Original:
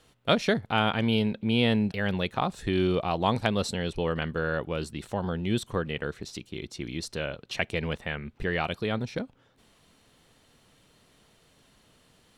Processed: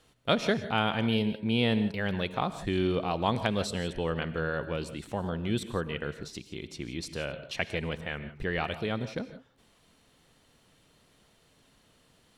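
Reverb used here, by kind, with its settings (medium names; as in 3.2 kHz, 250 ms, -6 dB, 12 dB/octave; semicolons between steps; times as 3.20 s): gated-style reverb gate 190 ms rising, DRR 12 dB; trim -2.5 dB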